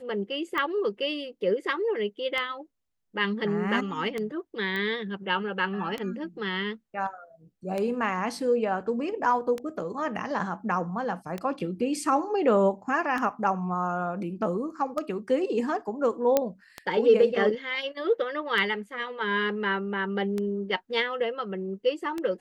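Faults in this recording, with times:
tick 33 1/3 rpm -17 dBFS
4.76 s: pop -20 dBFS
16.37 s: pop -8 dBFS

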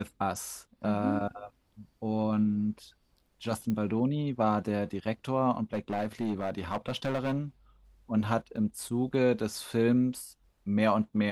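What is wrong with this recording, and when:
3.70 s: pop -21 dBFS
5.73–7.39 s: clipped -26 dBFS
8.56 s: dropout 3.7 ms

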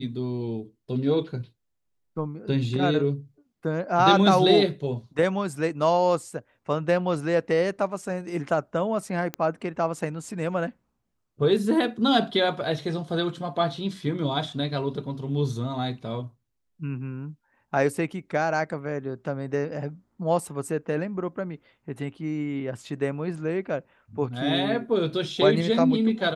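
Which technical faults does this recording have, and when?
9.34 s: pop -14 dBFS

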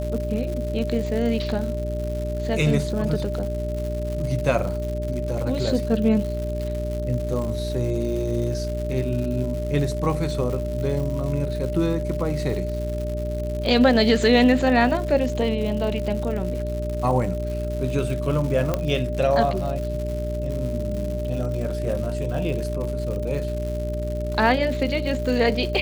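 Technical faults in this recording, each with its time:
crackle 190 per s -30 dBFS
hum 60 Hz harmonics 7 -28 dBFS
whine 600 Hz -29 dBFS
18.74 s: pop -9 dBFS

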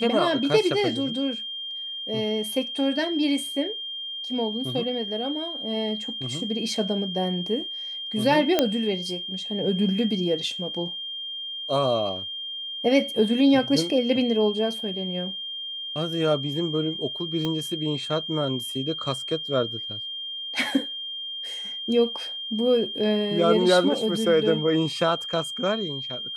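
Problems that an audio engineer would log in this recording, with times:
whine 3.2 kHz -31 dBFS
8.59 s: pop -5 dBFS
17.45 s: pop -15 dBFS

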